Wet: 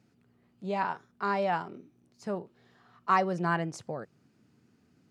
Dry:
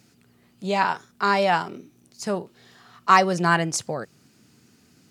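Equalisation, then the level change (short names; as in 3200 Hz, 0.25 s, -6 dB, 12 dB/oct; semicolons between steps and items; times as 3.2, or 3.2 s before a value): high shelf 2400 Hz -10 dB; high shelf 5100 Hz -5.5 dB; -7.0 dB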